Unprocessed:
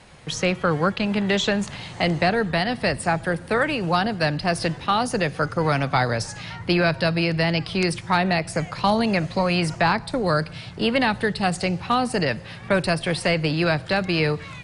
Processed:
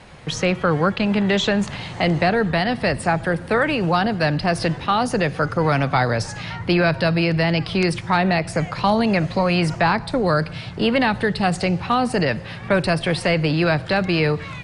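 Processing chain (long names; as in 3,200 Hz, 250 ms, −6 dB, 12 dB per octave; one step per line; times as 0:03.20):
high-shelf EQ 5,400 Hz −8.5 dB
in parallel at −1.5 dB: brickwall limiter −20 dBFS, peak gain reduction 11 dB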